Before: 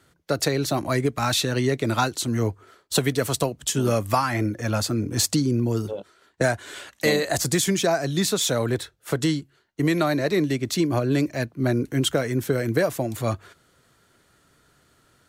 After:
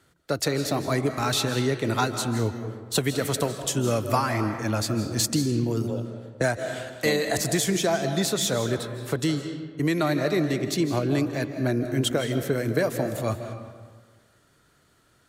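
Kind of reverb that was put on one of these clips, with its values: digital reverb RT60 1.5 s, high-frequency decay 0.55×, pre-delay 0.12 s, DRR 7.5 dB; gain -2.5 dB

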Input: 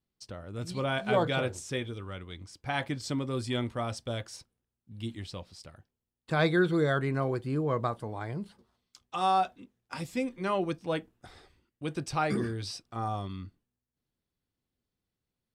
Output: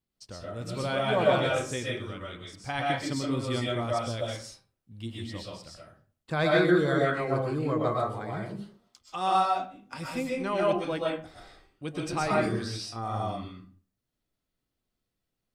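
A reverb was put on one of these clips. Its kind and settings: digital reverb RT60 0.42 s, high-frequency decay 0.65×, pre-delay 85 ms, DRR -3.5 dB; gain -1.5 dB

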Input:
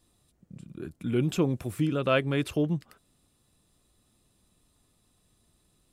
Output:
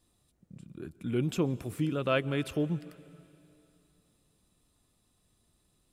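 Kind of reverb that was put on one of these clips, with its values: plate-style reverb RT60 2.8 s, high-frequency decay 1×, pre-delay 0.11 s, DRR 19 dB; gain -3.5 dB

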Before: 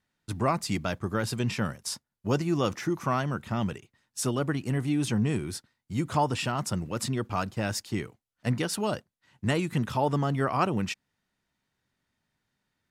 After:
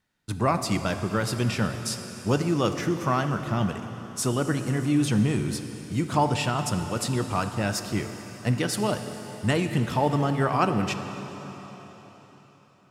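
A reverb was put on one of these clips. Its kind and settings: plate-style reverb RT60 4.3 s, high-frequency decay 1×, DRR 7 dB; gain +2.5 dB

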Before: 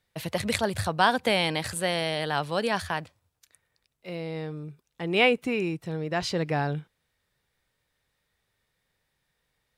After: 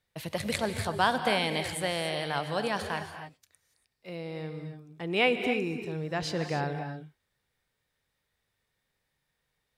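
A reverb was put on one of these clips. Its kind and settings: non-linear reverb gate 0.31 s rising, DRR 7 dB; gain -4 dB

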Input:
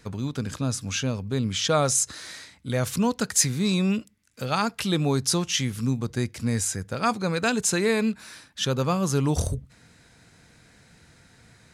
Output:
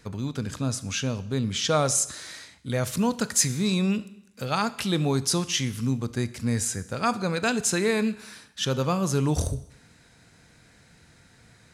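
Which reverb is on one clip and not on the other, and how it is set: Schroeder reverb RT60 0.8 s, combs from 26 ms, DRR 15 dB; gain -1 dB

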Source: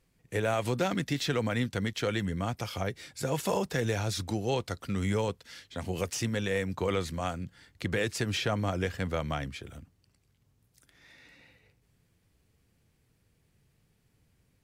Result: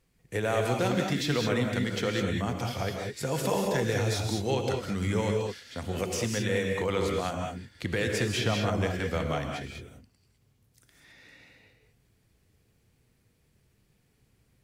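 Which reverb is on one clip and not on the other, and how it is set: non-linear reverb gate 0.23 s rising, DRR 1.5 dB

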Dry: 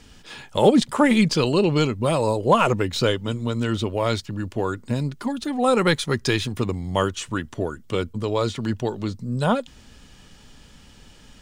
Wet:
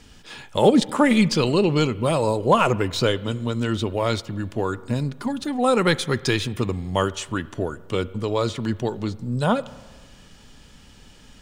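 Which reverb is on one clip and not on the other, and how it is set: spring tank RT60 1.5 s, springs 32/49 ms, chirp 60 ms, DRR 18 dB

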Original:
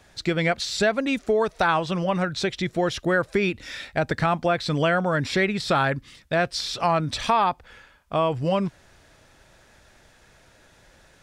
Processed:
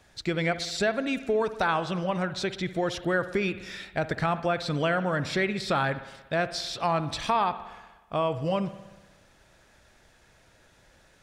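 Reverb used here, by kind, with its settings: spring tank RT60 1.2 s, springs 60 ms, chirp 30 ms, DRR 12.5 dB; gain -4.5 dB

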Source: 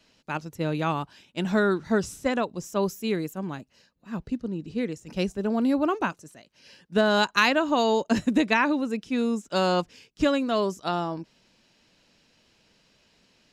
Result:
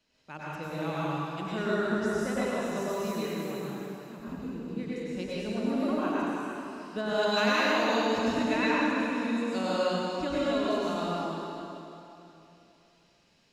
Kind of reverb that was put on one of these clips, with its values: plate-style reverb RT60 3 s, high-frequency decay 0.95×, pre-delay 85 ms, DRR -8.5 dB; gain -12.5 dB

